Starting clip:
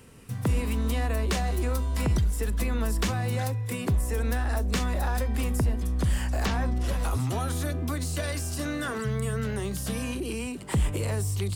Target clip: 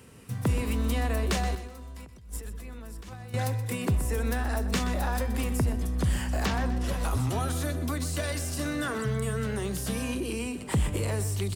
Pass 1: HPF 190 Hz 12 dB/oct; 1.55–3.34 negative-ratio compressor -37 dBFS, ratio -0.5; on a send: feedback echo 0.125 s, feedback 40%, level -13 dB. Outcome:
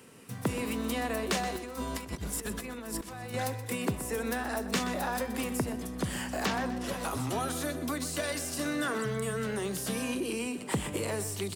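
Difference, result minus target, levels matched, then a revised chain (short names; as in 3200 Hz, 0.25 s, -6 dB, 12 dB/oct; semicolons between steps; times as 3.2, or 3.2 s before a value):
125 Hz band -6.5 dB
HPF 54 Hz 12 dB/oct; 1.55–3.34 negative-ratio compressor -37 dBFS, ratio -0.5; on a send: feedback echo 0.125 s, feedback 40%, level -13 dB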